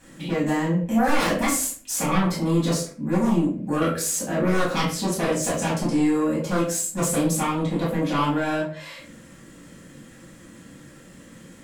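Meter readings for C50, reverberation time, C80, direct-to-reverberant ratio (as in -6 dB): 5.0 dB, 0.50 s, 10.0 dB, -8.0 dB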